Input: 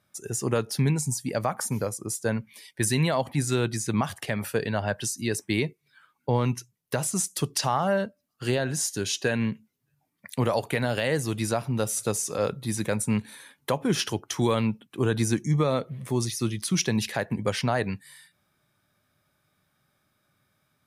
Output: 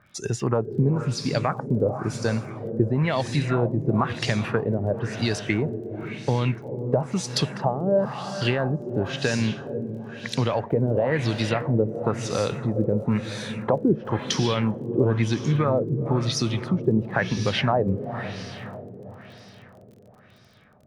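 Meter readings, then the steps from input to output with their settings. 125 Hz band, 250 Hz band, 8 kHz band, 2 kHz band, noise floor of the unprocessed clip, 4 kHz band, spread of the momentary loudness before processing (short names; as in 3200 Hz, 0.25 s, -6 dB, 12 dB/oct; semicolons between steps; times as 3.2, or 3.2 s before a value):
+4.0 dB, +3.5 dB, -8.0 dB, +1.5 dB, -74 dBFS, +2.0 dB, 6 LU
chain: low shelf 120 Hz +7.5 dB; compressor 2.5:1, threshold -34 dBFS, peak gain reduction 11.5 dB; diffused feedback echo 0.472 s, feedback 52%, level -9 dB; LFO low-pass sine 0.99 Hz 390–5200 Hz; crackle 26/s -54 dBFS; gain +9 dB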